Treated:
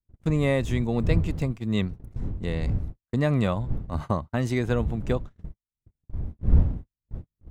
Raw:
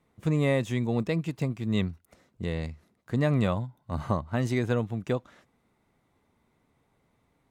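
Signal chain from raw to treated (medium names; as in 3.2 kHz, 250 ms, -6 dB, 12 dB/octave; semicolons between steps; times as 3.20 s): wind noise 91 Hz -30 dBFS; gate -33 dBFS, range -49 dB; trim +1.5 dB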